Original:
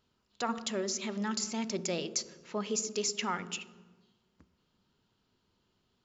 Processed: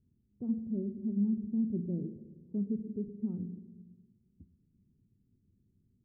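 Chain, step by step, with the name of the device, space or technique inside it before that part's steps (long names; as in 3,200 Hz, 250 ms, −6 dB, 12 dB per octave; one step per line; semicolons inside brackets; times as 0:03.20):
the neighbour's flat through the wall (low-pass filter 280 Hz 24 dB per octave; parametric band 100 Hz +5 dB 1 octave)
level +5.5 dB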